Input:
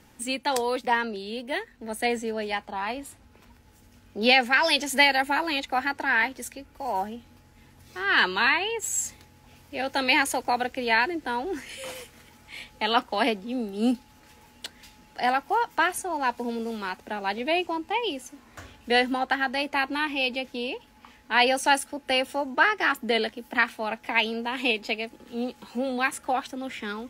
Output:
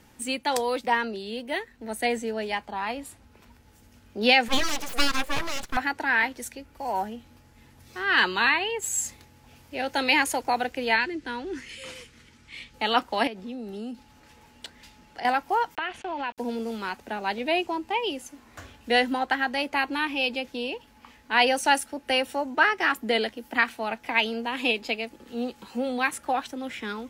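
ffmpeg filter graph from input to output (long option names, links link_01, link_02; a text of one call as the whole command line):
ffmpeg -i in.wav -filter_complex "[0:a]asettb=1/sr,asplit=3[link_01][link_02][link_03];[link_01]atrim=end=4.484[link_04];[link_02]atrim=start=4.48:end=5.77,asetpts=PTS-STARTPTS,afade=type=in:duration=0.004:curve=qsin,afade=type=out:start_time=1.286:duration=0.004:curve=qsin,acrossover=split=2700[link_05][link_06];[link_06]acompressor=threshold=-29dB:ratio=4:attack=1:release=60[link_07];[link_05][link_07]amix=inputs=2:normalize=0,aeval=exprs='abs(val(0))':channel_layout=same[link_08];[link_03]atrim=start=5.766[link_09];[link_04][link_08]acrossfade=duration=0.004:curve1=hsin:curve2=qsin[link_10];[link_10][link_09]acrossfade=duration=0.004:curve1=qsin:curve2=hsin,asettb=1/sr,asplit=3[link_11][link_12][link_13];[link_11]atrim=end=10.964[link_14];[link_12]atrim=start=10.96:end=12.74,asetpts=PTS-STARTPTS,afade=type=in:duration=0.004:curve=qsin,afade=type=out:start_time=1.776:duration=0.004:curve=qsin,lowpass=7200,equalizer=frequency=730:width_type=o:width=1:gain=-11[link_15];[link_13]atrim=start=12.736[link_16];[link_14][link_15]acrossfade=duration=0.004:curve1=hsin:curve2=qsin[link_17];[link_17][link_16]acrossfade=duration=0.004:curve1=qsin:curve2=hsin,asettb=1/sr,asplit=3[link_18][link_19][link_20];[link_18]atrim=end=13.274[link_21];[link_19]atrim=start=13.27:end=15.25,asetpts=PTS-STARTPTS,afade=type=in:duration=0.004:curve=qsin,afade=type=out:start_time=1.976:duration=0.004:curve=qsin,highshelf=frequency=10000:gain=-8,acompressor=threshold=-32dB:ratio=10:attack=3.2:release=140:knee=1:detection=peak[link_22];[link_20]atrim=start=15.246[link_23];[link_21][link_22]acrossfade=duration=0.004:curve1=hsin:curve2=qsin[link_24];[link_24][link_23]acrossfade=duration=0.004:curve1=qsin:curve2=hsin,asettb=1/sr,asplit=3[link_25][link_26][link_27];[link_25]atrim=end=15.754[link_28];[link_26]atrim=start=15.75:end=16.38,asetpts=PTS-STARTPTS,afade=type=in:duration=0.004:curve=qsin,afade=type=out:start_time=0.626:duration=0.004:curve=qsin,aeval=exprs='val(0)*gte(abs(val(0)),0.00944)':channel_layout=same,acompressor=threshold=-28dB:ratio=10:attack=3.2:release=140:knee=1:detection=peak,lowpass=frequency=2900:width_type=q:width=2.4[link_29];[link_27]atrim=start=16.376[link_30];[link_28][link_29]acrossfade=duration=0.004:curve1=hsin:curve2=qsin[link_31];[link_31][link_30]acrossfade=duration=0.004:curve1=qsin:curve2=hsin" out.wav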